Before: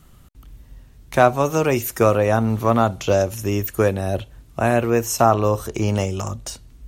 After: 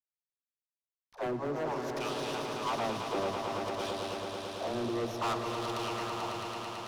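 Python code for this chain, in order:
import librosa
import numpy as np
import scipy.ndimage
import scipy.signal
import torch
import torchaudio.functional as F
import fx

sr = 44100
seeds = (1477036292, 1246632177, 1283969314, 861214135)

y = fx.delta_hold(x, sr, step_db=-26.0)
y = fx.graphic_eq(y, sr, hz=(125, 250, 500, 1000, 2000, 4000, 8000), db=(6, 5, -7, 7, -9, 5, 7))
y = fx.wah_lfo(y, sr, hz=0.57, low_hz=370.0, high_hz=3300.0, q=3.6)
y = fx.high_shelf_res(y, sr, hz=7700.0, db=-12.0, q=3.0)
y = fx.dispersion(y, sr, late='lows', ms=114.0, hz=370.0)
y = np.clip(y, -10.0 ** (-26.5 / 20.0), 10.0 ** (-26.5 / 20.0))
y = fx.echo_swell(y, sr, ms=110, loudest=5, wet_db=-8)
y = fx.running_max(y, sr, window=3)
y = y * librosa.db_to_amplitude(-4.0)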